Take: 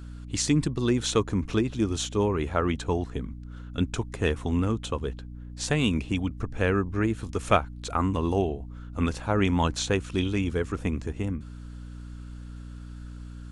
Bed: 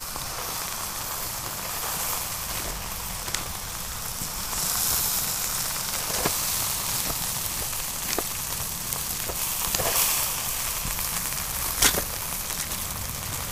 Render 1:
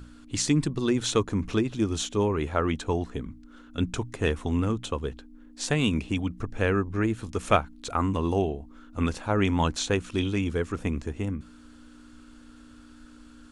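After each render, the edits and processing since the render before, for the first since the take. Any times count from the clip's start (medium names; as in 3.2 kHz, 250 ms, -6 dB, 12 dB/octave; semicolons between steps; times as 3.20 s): hum notches 60/120/180 Hz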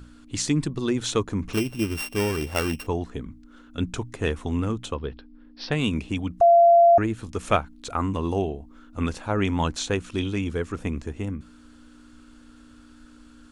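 1.53–2.87 s: sorted samples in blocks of 16 samples; 4.94–5.72 s: steep low-pass 5.4 kHz 96 dB/octave; 6.41–6.98 s: bleep 685 Hz -11 dBFS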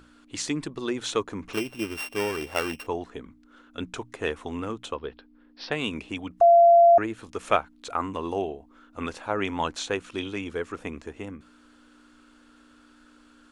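tone controls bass -14 dB, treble -5 dB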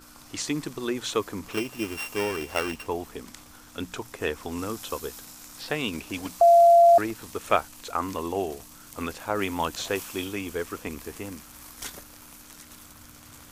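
add bed -18 dB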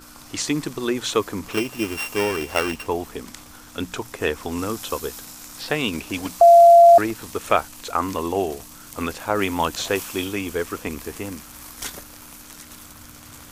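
trim +5.5 dB; peak limiter -3 dBFS, peak gain reduction 3 dB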